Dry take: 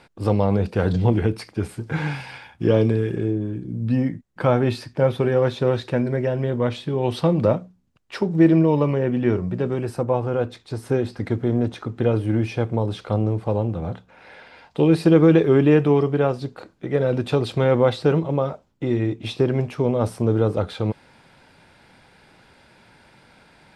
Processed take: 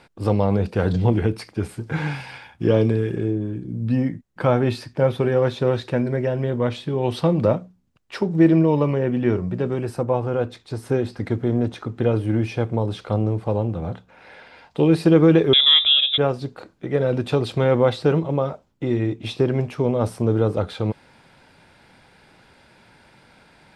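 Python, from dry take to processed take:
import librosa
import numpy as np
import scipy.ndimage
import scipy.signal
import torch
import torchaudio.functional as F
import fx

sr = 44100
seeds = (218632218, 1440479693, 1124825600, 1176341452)

y = fx.freq_invert(x, sr, carrier_hz=3700, at=(15.53, 16.18))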